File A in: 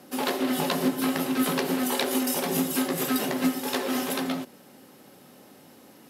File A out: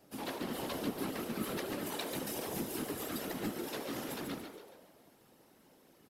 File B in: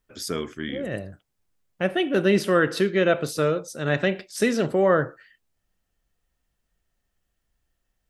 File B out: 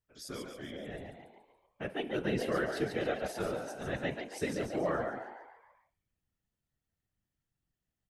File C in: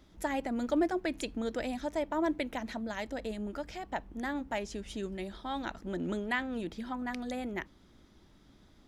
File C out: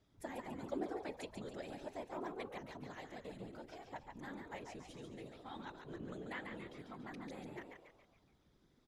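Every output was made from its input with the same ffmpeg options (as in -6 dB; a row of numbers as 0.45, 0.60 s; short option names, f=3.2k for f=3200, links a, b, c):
-filter_complex "[0:a]asplit=7[a][b][c][d][e][f][g];[b]adelay=141,afreqshift=84,volume=-6dB[h];[c]adelay=282,afreqshift=168,volume=-12.6dB[i];[d]adelay=423,afreqshift=252,volume=-19.1dB[j];[e]adelay=564,afreqshift=336,volume=-25.7dB[k];[f]adelay=705,afreqshift=420,volume=-32.2dB[l];[g]adelay=846,afreqshift=504,volume=-38.8dB[m];[a][h][i][j][k][l][m]amix=inputs=7:normalize=0,afftfilt=real='hypot(re,im)*cos(2*PI*random(0))':imag='hypot(re,im)*sin(2*PI*random(1))':win_size=512:overlap=0.75,volume=-7.5dB"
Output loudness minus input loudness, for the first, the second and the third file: -12.5, -12.5, -12.5 LU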